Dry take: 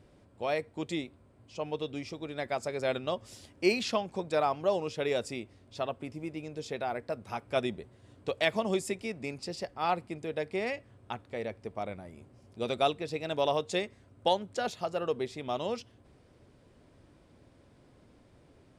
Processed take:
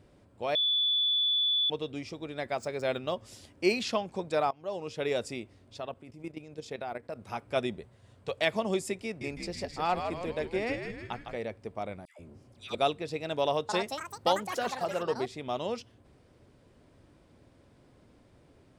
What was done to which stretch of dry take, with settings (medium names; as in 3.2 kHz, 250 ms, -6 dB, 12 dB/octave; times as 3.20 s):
0.55–1.70 s: bleep 3.46 kHz -24 dBFS
2.54–3.22 s: median filter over 3 samples
4.51–5.05 s: fade in, from -22 dB
5.77–7.19 s: level held to a coarse grid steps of 12 dB
7.81–8.38 s: peaking EQ 310 Hz -11 dB 0.53 oct
9.05–11.36 s: frequency-shifting echo 158 ms, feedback 55%, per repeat -90 Hz, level -6 dB
12.05–12.75 s: phase dispersion lows, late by 144 ms, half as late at 1.2 kHz
13.40–15.75 s: ever faster or slower copies 288 ms, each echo +7 st, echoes 3, each echo -6 dB